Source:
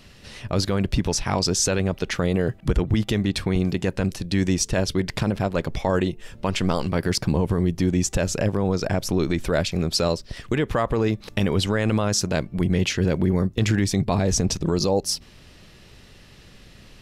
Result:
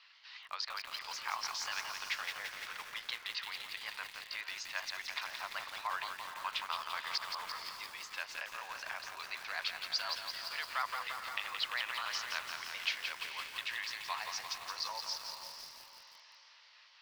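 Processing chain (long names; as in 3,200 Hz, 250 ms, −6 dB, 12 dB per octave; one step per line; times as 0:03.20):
pitch shifter gated in a rhythm +2 semitones, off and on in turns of 123 ms
elliptic band-pass filter 1,000–4,700 Hz, stop band 60 dB
feedback delay with all-pass diffusion 497 ms, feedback 42%, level −9 dB
feedback echo at a low word length 171 ms, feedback 80%, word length 7 bits, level −5 dB
level −7 dB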